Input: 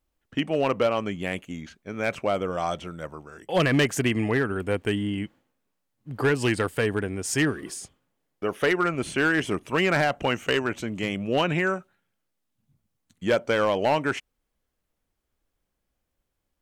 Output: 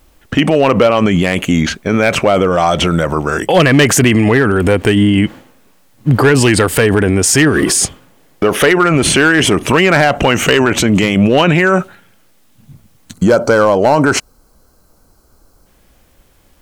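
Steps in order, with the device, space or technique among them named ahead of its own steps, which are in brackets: spectral gain 13.14–15.67, 1600–3900 Hz -12 dB; loud club master (compressor 2:1, threshold -25 dBFS, peak gain reduction 4.5 dB; hard clip -19 dBFS, distortion -29 dB; maximiser +30.5 dB); gain -2 dB

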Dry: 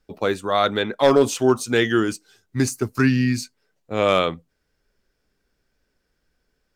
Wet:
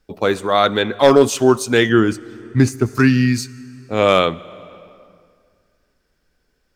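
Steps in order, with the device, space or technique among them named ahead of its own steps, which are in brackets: compressed reverb return (on a send at -13.5 dB: reverb RT60 2.1 s, pre-delay 56 ms + compressor 5:1, threshold -24 dBFS, peak gain reduction 12 dB); 1.89–2.86 on the sum: tone controls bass +5 dB, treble -8 dB; gain +4.5 dB

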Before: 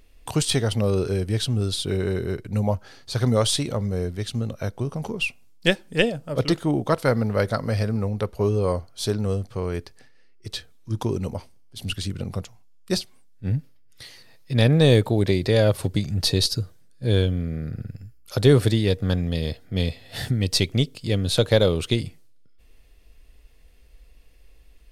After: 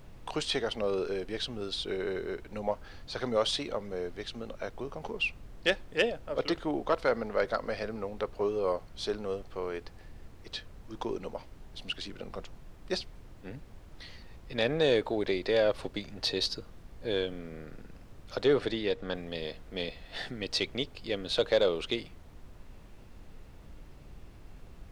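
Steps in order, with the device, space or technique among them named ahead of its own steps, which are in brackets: aircraft cabin announcement (BPF 390–4000 Hz; soft clip -10.5 dBFS, distortion -21 dB; brown noise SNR 13 dB); 18.42–19.15 high shelf 7900 Hz -9 dB; gain -3.5 dB

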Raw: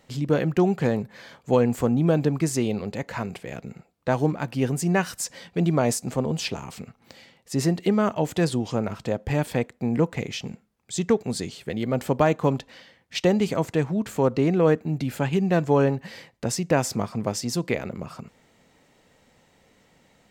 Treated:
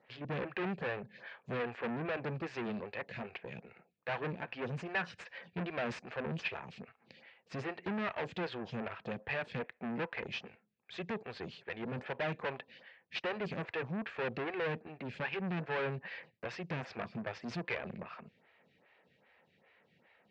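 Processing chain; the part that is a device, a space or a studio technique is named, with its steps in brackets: vibe pedal into a guitar amplifier (photocell phaser 2.5 Hz; tube stage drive 31 dB, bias 0.75; speaker cabinet 110–4000 Hz, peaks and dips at 280 Hz -8 dB, 1700 Hz +8 dB, 2500 Hz +8 dB); gain -2 dB

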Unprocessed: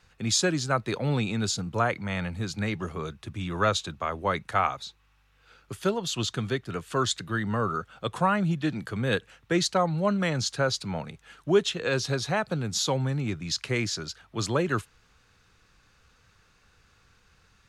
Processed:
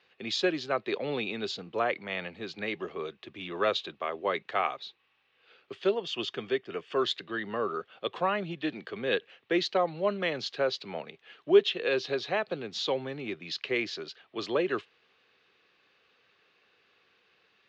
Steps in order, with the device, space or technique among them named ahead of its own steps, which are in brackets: 5.95–6.99 notch 4000 Hz, Q 5.4; phone earpiece (speaker cabinet 380–4000 Hz, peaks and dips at 390 Hz +5 dB, 920 Hz -6 dB, 1400 Hz -8 dB, 2900 Hz +3 dB)

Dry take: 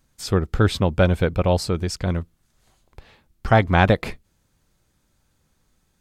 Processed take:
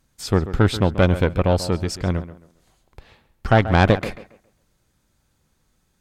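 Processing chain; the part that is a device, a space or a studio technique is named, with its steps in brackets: rockabilly slapback (tube stage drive 8 dB, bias 0.65; tape echo 0.136 s, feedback 31%, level -12 dB, low-pass 2300 Hz); gain +3.5 dB

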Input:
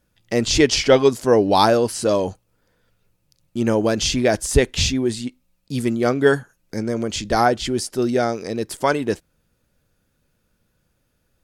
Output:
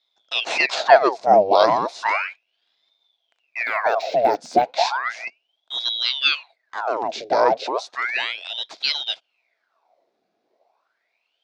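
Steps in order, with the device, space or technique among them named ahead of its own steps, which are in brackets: voice changer toy (ring modulator with a swept carrier 1900 Hz, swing 90%, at 0.34 Hz; speaker cabinet 420–4700 Hz, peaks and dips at 670 Hz +9 dB, 1200 Hz -6 dB, 1800 Hz -7 dB, 3000 Hz -8 dB); 3.65–4.72 de-esser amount 95%; gain +2.5 dB

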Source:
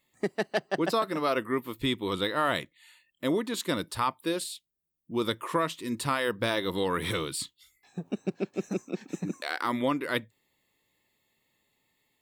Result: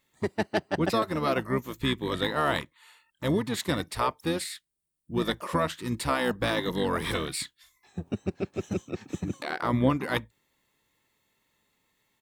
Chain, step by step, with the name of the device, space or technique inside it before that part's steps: 9.43–9.9 tilt -2 dB/oct; octave pedal (harmoniser -12 st -5 dB)

